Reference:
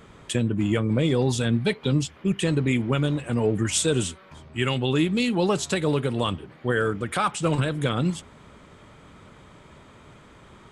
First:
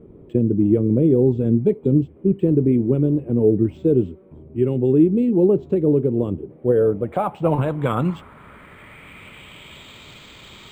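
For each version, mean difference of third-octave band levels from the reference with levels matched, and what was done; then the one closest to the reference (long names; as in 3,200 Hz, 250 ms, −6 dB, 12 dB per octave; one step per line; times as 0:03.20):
9.5 dB: flat-topped bell 3,600 Hz +11 dB
low-pass filter sweep 380 Hz → 4,200 Hz, 0:06.33–0:10.07
linearly interpolated sample-rate reduction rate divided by 4×
level +2.5 dB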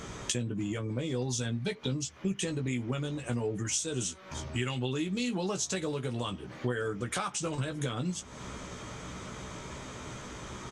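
6.5 dB: parametric band 6,100 Hz +13.5 dB 0.59 octaves
downward compressor 8 to 1, threshold −37 dBFS, peak gain reduction 23.5 dB
double-tracking delay 16 ms −6.5 dB
level +5.5 dB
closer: second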